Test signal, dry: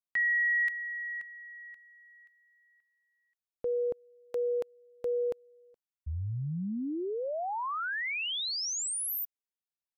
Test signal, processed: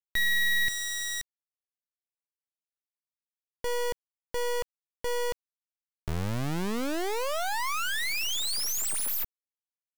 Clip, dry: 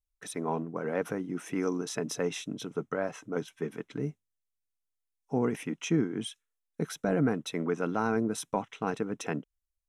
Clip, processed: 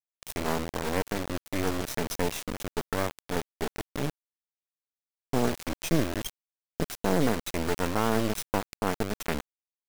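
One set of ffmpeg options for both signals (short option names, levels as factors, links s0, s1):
-af "acrusher=bits=3:dc=4:mix=0:aa=0.000001,volume=1.78"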